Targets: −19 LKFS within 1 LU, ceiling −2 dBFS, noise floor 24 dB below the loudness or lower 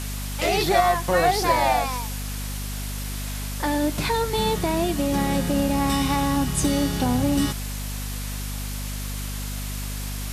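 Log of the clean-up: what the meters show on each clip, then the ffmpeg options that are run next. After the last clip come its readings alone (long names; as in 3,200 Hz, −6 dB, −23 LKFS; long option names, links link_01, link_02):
mains hum 50 Hz; hum harmonics up to 250 Hz; level of the hum −28 dBFS; background noise floor −30 dBFS; target noise floor −48 dBFS; integrated loudness −24.0 LKFS; sample peak −6.0 dBFS; target loudness −19.0 LKFS
→ -af "bandreject=frequency=50:width_type=h:width=6,bandreject=frequency=100:width_type=h:width=6,bandreject=frequency=150:width_type=h:width=6,bandreject=frequency=200:width_type=h:width=6,bandreject=frequency=250:width_type=h:width=6"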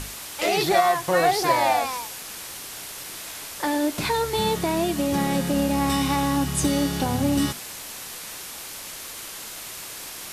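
mains hum none found; background noise floor −37 dBFS; target noise floor −49 dBFS
→ -af "afftdn=noise_reduction=12:noise_floor=-37"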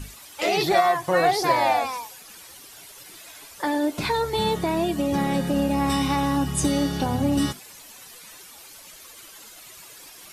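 background noise floor −46 dBFS; target noise floor −47 dBFS
→ -af "afftdn=noise_reduction=6:noise_floor=-46"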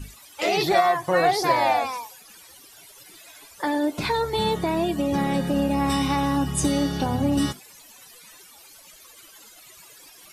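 background noise floor −49 dBFS; integrated loudness −23.0 LKFS; sample peak −6.5 dBFS; target loudness −19.0 LKFS
→ -af "volume=4dB"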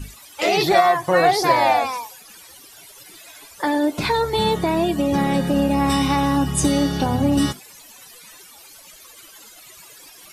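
integrated loudness −19.0 LKFS; sample peak −2.5 dBFS; background noise floor −45 dBFS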